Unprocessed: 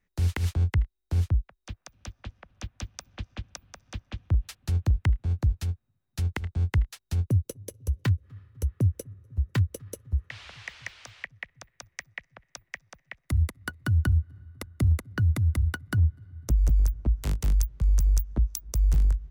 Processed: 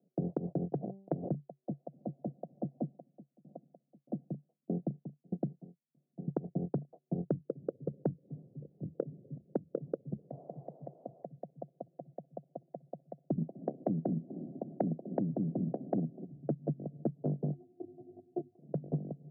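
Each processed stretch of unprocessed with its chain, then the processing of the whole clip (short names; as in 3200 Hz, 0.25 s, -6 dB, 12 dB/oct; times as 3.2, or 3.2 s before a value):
0.72–1.29 delta modulation 16 kbps, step -37 dBFS + de-hum 194.9 Hz, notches 27 + negative-ratio compressor -28 dBFS
2.82–6.28 HPF 150 Hz + bell 190 Hz +5 dB 1.8 oct + dB-ramp tremolo decaying 1.6 Hz, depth 37 dB
8.3–9.84 doubler 26 ms -9 dB + auto swell 0.183 s
13.37–16.24 spectral limiter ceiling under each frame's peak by 22 dB + bell 150 Hz -10 dB 0.26 oct + echo 0.249 s -24 dB
17.51–18.59 compressor, threshold -28 dBFS + robotiser 358 Hz + detuned doubles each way 51 cents
whole clip: Chebyshev band-pass 140–710 Hz, order 5; compressor 12:1, threshold -41 dBFS; gain +11.5 dB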